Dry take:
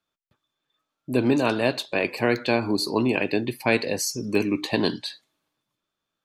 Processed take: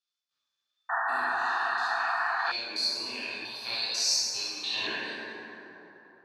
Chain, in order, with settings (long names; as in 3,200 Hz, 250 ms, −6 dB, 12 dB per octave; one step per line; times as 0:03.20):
spectrum averaged block by block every 100 ms
0:01.22–0:02.39: guitar amp tone stack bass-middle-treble 5-5-5
band-pass filter sweep 5,000 Hz → 420 Hz, 0:04.43–0:05.66
on a send: delay with a high-pass on its return 108 ms, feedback 67%, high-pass 2,000 Hz, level −16.5 dB
on the sum: dense smooth reverb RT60 3.6 s, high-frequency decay 0.35×, DRR −9.5 dB
0:00.89–0:02.52: sound drawn into the spectrogram noise 660–1,900 Hz −29 dBFS
0:03.45–0:04.87: graphic EQ with 10 bands 125 Hz +5 dB, 250 Hz −6 dB, 500 Hz −4 dB, 1,000 Hz +6 dB, 2,000 Hz −9 dB, 4,000 Hz +8 dB